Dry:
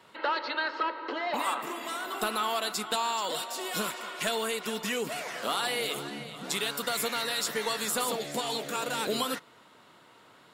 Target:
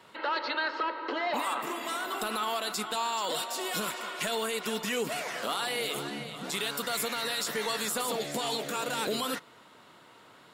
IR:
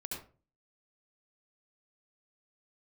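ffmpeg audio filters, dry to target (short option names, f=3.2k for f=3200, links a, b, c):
-af "alimiter=limit=-23dB:level=0:latency=1:release=34,volume=1.5dB"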